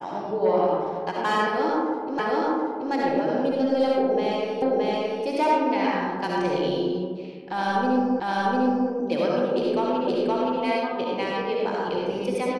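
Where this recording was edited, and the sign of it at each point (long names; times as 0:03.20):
0:02.19: the same again, the last 0.73 s
0:04.62: the same again, the last 0.62 s
0:08.20: the same again, the last 0.7 s
0:10.07: the same again, the last 0.52 s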